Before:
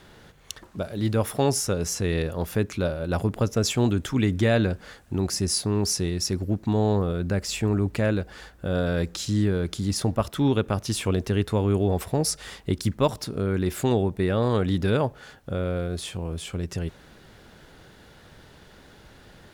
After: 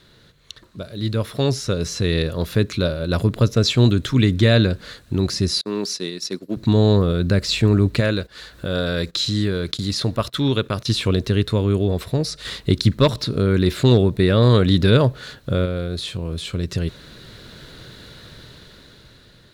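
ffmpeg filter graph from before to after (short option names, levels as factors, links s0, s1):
-filter_complex "[0:a]asettb=1/sr,asplit=3[s0][s1][s2];[s0]atrim=end=5.614[s3];[s1]atrim=start=5.61:end=6.57,asetpts=PTS-STARTPTS,afade=t=in:d=0.004:c=qsin,afade=t=out:st=0.956:d=0.004:c=qsin,agate=range=0.0224:threshold=0.0708:ratio=3:release=100:detection=peak,highpass=f=180:w=0.5412,highpass=f=180:w=1.3066,lowshelf=f=320:g=-6[s4];[s2]atrim=start=6.566[s5];[s3][s4]acrossfade=d=0.004:c1=hsin:c2=qsin[s6];[s6][s5]acrossfade=d=0.004:c1=qsin:c2=hsin,asettb=1/sr,asplit=3[s7][s8][s9];[s7]atrim=end=8.004[s10];[s8]atrim=start=8:end=10.86,asetpts=PTS-STARTPTS,afade=t=in:d=0.004:c=qsin,afade=t=out:st=2.856:d=0.004:c=qsin,agate=range=0.0794:threshold=0.0126:ratio=16:release=100:detection=peak,lowshelf=f=400:g=-6.5,acompressor=mode=upward:threshold=0.0398:ratio=2.5:attack=3.2:release=140:knee=2.83:detection=peak[s11];[s9]atrim=start=10.856[s12];[s10][s11]acrossfade=d=0.004:c1=hsin:c2=qsin[s13];[s13][s12]acrossfade=d=0.004:c1=qsin:c2=hsin,asettb=1/sr,asplit=3[s14][s15][s16];[s14]atrim=end=12.454[s17];[s15]atrim=start=12.45:end=15.66,asetpts=PTS-STARTPTS,afade=t=in:d=0.004:c=qsin,afade=t=out:st=3.206:d=0.004:c=qsin,acontrast=34,asoftclip=type=hard:threshold=0.355[s18];[s16]atrim=start=15.656[s19];[s17][s18]acrossfade=d=0.004:c1=hsin:c2=qsin[s20];[s20][s19]acrossfade=d=0.004:c1=qsin:c2=hsin,acrossover=split=5300[s21][s22];[s22]acompressor=threshold=0.00708:ratio=4:attack=1:release=60[s23];[s21][s23]amix=inputs=2:normalize=0,equalizer=f=125:t=o:w=0.33:g=6,equalizer=f=800:t=o:w=0.33:g=-11,equalizer=f=4000:t=o:w=0.33:g=12,dynaudnorm=f=410:g=7:m=3.76,volume=0.708"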